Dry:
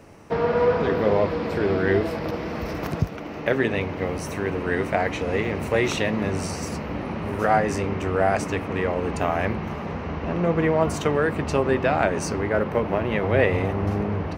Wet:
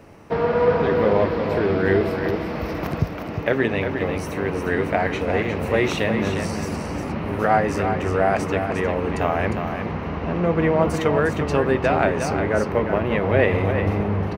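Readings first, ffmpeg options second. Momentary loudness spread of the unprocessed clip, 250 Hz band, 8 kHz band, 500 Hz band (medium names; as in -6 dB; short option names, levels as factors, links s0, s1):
9 LU, +2.5 dB, -2.0 dB, +2.5 dB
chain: -filter_complex "[0:a]equalizer=f=7300:w=1.1:g=-5.5,asplit=2[s0][s1];[s1]aecho=0:1:355:0.447[s2];[s0][s2]amix=inputs=2:normalize=0,volume=1.19"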